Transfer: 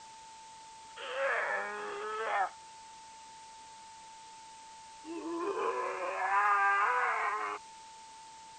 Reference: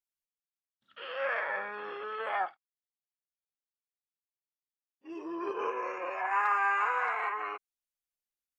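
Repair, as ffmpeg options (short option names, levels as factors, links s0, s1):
-af "bandreject=f=890:w=30,afftdn=nr=30:nf=-52"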